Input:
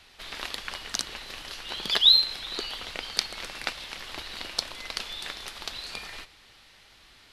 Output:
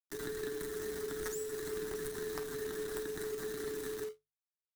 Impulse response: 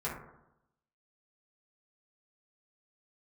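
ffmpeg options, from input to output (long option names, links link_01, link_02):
-af "firequalizer=gain_entry='entry(190,0);entry(340,-29);entry(520,-15);entry(1100,10);entry(1600,-29);entry(2200,-23);entry(7600,-17)':delay=0.05:min_phase=1,acrusher=bits=5:dc=4:mix=0:aa=0.000001,aecho=1:1:15|50|65|75:0.398|0.126|0.178|0.188,asetrate=57191,aresample=44100,atempo=0.771105,equalizer=frequency=1900:width=0.84:gain=-14,volume=32dB,asoftclip=hard,volume=-32dB,acompressor=threshold=-48dB:ratio=8,afreqshift=-280,asetrate=67914,aresample=44100,bandreject=frequency=50:width_type=h:width=6,bandreject=frequency=100:width_type=h:width=6,bandreject=frequency=150:width_type=h:width=6,acrusher=bits=3:mode=log:mix=0:aa=0.000001,volume=12dB"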